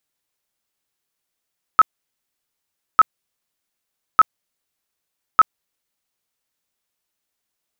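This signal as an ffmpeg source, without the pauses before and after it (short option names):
-f lavfi -i "aevalsrc='0.531*sin(2*PI*1290*mod(t,1.2))*lt(mod(t,1.2),34/1290)':d=4.8:s=44100"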